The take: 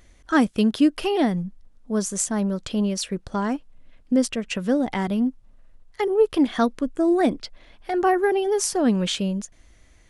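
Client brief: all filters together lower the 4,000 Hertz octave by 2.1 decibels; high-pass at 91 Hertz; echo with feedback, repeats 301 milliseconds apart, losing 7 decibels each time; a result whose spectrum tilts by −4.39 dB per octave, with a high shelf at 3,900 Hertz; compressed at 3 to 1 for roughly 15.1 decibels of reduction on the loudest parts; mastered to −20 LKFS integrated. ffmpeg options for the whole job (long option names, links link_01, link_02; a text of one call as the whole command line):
ffmpeg -i in.wav -af "highpass=91,highshelf=frequency=3900:gain=6,equalizer=frequency=4000:width_type=o:gain=-7,acompressor=threshold=-35dB:ratio=3,aecho=1:1:301|602|903|1204|1505:0.447|0.201|0.0905|0.0407|0.0183,volume=14.5dB" out.wav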